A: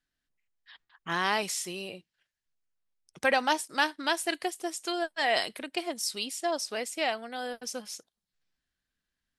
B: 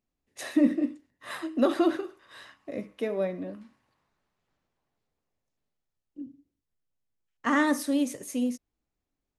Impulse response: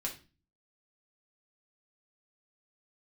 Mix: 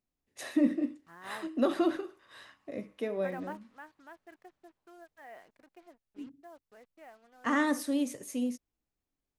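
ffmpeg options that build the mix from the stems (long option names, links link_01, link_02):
-filter_complex "[0:a]lowpass=frequency=1900:width=0.5412,lowpass=frequency=1900:width=1.3066,acrusher=bits=6:mix=0:aa=0.5,volume=-16dB[link_01];[1:a]volume=-4dB,asplit=2[link_02][link_03];[link_03]apad=whole_len=414080[link_04];[link_01][link_04]sidechaingate=range=-6dB:threshold=-53dB:ratio=16:detection=peak[link_05];[link_05][link_02]amix=inputs=2:normalize=0"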